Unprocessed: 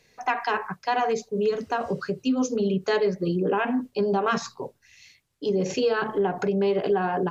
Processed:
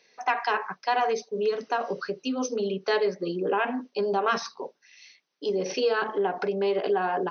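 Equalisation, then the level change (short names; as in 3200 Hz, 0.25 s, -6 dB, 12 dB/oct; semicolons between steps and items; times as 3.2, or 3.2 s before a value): brick-wall FIR band-pass 150–6300 Hz; tone controls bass -13 dB, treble +2 dB; 0.0 dB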